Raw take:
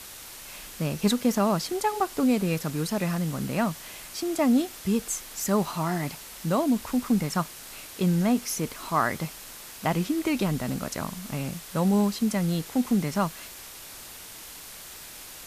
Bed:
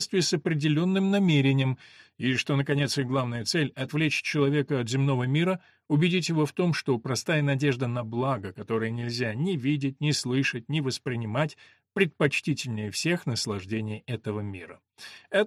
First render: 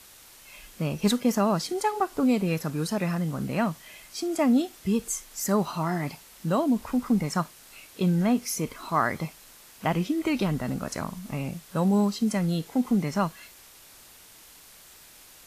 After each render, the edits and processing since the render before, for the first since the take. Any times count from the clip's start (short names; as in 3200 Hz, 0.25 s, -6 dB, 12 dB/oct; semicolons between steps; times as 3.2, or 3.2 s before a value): noise print and reduce 8 dB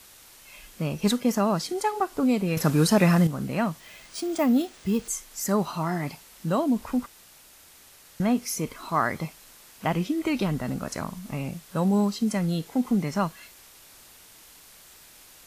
2.57–3.27 gain +8.5 dB; 3.8–5.08 careless resampling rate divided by 3×, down none, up hold; 7.06–8.2 room tone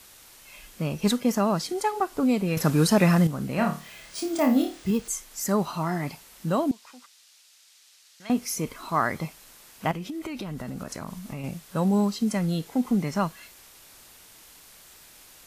3.55–4.91 flutter echo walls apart 4.6 m, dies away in 0.32 s; 6.71–8.3 band-pass 4700 Hz, Q 0.98; 9.91–11.44 compressor 10:1, threshold -30 dBFS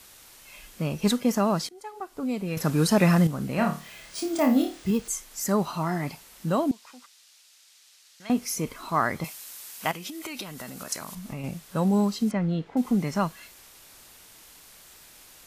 1.69–3.09 fade in, from -22.5 dB; 9.24–11.15 tilt +3 dB/oct; 12.31–12.77 LPF 2400 Hz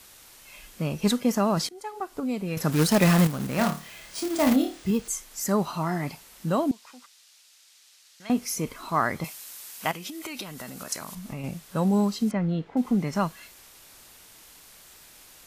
1.57–2.2 gain +3.5 dB; 2.72–4.56 companded quantiser 4-bit; 12.31–13.13 high shelf 4800 Hz -5.5 dB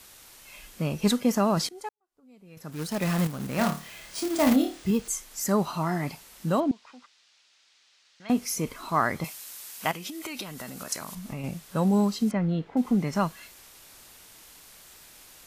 1.89–3.74 fade in quadratic; 6.6–8.29 air absorption 130 m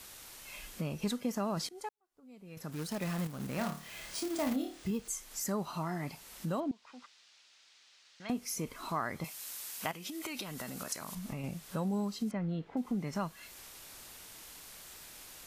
compressor 2:1, threshold -40 dBFS, peak gain reduction 13 dB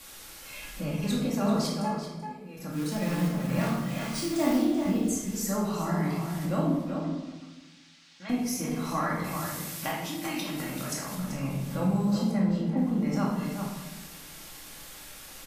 outdoor echo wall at 66 m, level -6 dB; shoebox room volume 520 m³, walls mixed, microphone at 2.3 m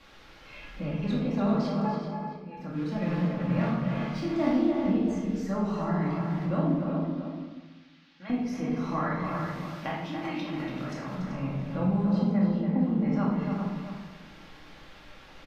air absorption 260 m; outdoor echo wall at 49 m, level -6 dB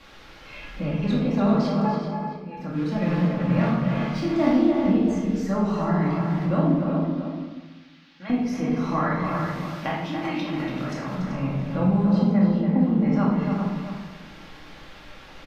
gain +5.5 dB